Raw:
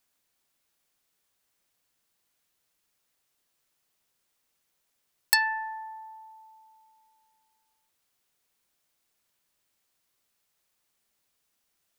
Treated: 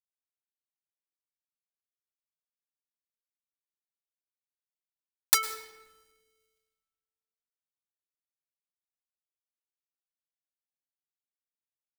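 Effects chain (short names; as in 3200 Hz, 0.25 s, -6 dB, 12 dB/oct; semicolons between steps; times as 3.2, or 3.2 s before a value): cycle switcher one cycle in 2, inverted; expander -53 dBFS; high shelf 3200 Hz +11.5 dB; in parallel at -9 dB: requantised 6-bit, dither none; on the sum: reverb removal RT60 1.5 s; on a send at -12 dB: reverb RT60 1.2 s, pre-delay 0.1 s; on the sum: gain -10.5 dB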